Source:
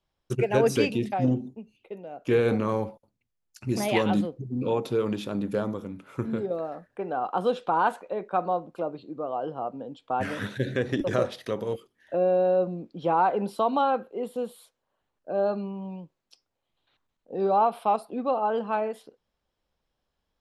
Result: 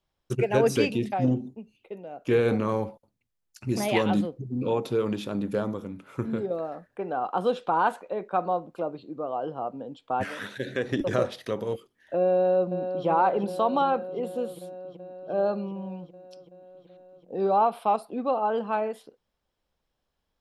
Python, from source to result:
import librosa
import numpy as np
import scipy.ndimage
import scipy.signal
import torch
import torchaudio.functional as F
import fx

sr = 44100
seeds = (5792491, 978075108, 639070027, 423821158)

y = fx.highpass(x, sr, hz=fx.line((10.23, 890.0), (10.9, 230.0)), slope=6, at=(10.23, 10.9), fade=0.02)
y = fx.echo_throw(y, sr, start_s=12.33, length_s=0.73, ms=380, feedback_pct=80, wet_db=-8.5)